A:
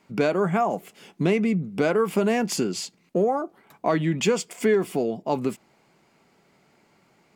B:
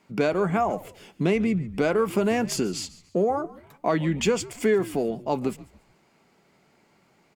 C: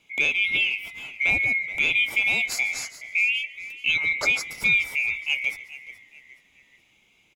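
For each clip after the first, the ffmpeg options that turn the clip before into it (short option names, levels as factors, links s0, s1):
-filter_complex "[0:a]asplit=4[s0][s1][s2][s3];[s1]adelay=143,afreqshift=-95,volume=0.119[s4];[s2]adelay=286,afreqshift=-190,volume=0.0367[s5];[s3]adelay=429,afreqshift=-285,volume=0.0115[s6];[s0][s4][s5][s6]amix=inputs=4:normalize=0,volume=0.891"
-filter_complex "[0:a]afftfilt=real='real(if(lt(b,920),b+92*(1-2*mod(floor(b/92),2)),b),0)':imag='imag(if(lt(b,920),b+92*(1-2*mod(floor(b/92),2)),b),0)':win_size=2048:overlap=0.75,asplit=4[s0][s1][s2][s3];[s1]adelay=424,afreqshift=-89,volume=0.158[s4];[s2]adelay=848,afreqshift=-178,volume=0.0589[s5];[s3]adelay=1272,afreqshift=-267,volume=0.0216[s6];[s0][s4][s5][s6]amix=inputs=4:normalize=0"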